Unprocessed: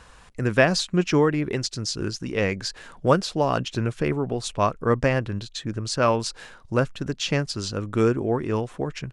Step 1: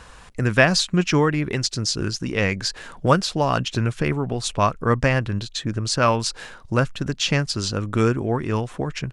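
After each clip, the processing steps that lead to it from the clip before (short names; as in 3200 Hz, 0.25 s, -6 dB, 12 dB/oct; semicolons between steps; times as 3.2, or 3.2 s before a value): dynamic EQ 420 Hz, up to -6 dB, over -32 dBFS, Q 0.77; gain +5 dB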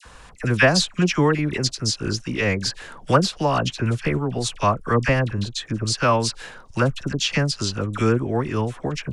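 dispersion lows, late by 55 ms, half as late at 1300 Hz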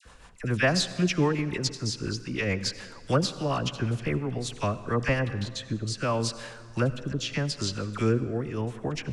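rotary speaker horn 7 Hz, later 0.8 Hz, at 3.94; on a send at -14 dB: reverb RT60 1.9 s, pre-delay 68 ms; on the sum: gain -4.5 dB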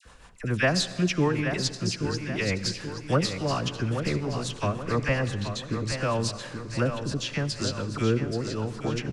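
feedback echo 0.828 s, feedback 46%, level -8 dB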